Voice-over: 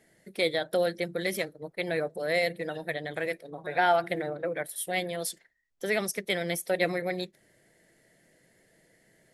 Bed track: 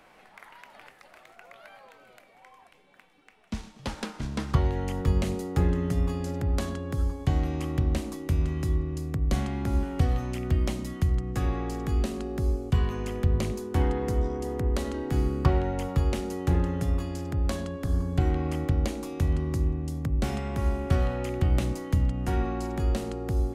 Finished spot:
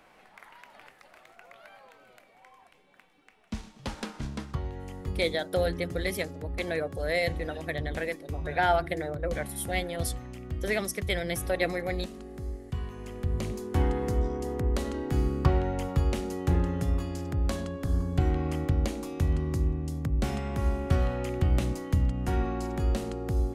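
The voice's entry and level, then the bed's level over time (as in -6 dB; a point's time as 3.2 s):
4.80 s, -1.0 dB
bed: 4.26 s -2 dB
4.55 s -10 dB
12.93 s -10 dB
13.68 s -1 dB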